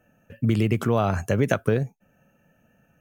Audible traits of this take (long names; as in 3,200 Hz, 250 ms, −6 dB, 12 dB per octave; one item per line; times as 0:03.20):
background noise floor −65 dBFS
spectral slope −6.0 dB per octave